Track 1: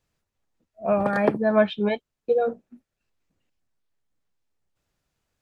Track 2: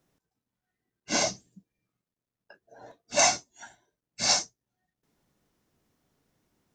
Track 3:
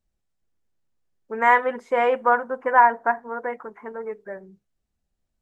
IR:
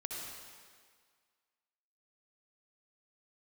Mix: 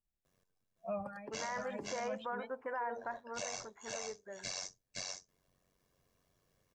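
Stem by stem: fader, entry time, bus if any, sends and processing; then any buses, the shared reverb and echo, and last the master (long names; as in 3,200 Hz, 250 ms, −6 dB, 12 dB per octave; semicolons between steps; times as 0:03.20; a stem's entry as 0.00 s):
−11.0 dB, 0.00 s, no send, echo send −6.5 dB, spectral dynamics exaggerated over time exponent 2; hum removal 73.72 Hz, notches 17; automatic ducking −15 dB, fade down 0.35 s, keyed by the third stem
−0.5 dB, 0.25 s, no send, echo send −5.5 dB, comb filter 1.8 ms, depth 69%; downward compressor 6 to 1, threshold −29 dBFS, peak gain reduction 13.5 dB; amplitude modulation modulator 93 Hz, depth 85%
−13.5 dB, 0.00 s, no send, no echo send, no processing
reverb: not used
echo: single-tap delay 513 ms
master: brickwall limiter −30 dBFS, peak gain reduction 13 dB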